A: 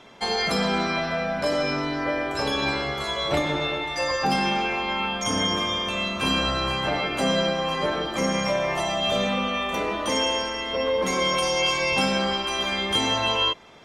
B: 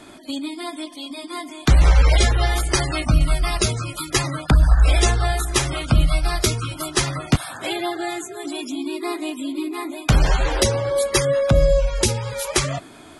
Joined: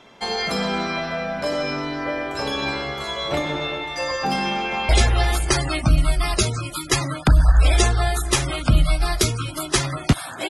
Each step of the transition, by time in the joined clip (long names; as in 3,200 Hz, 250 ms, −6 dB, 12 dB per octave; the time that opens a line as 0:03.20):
A
0:04.53–0:04.89: delay throw 180 ms, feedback 65%, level −6.5 dB
0:04.89: continue with B from 0:02.12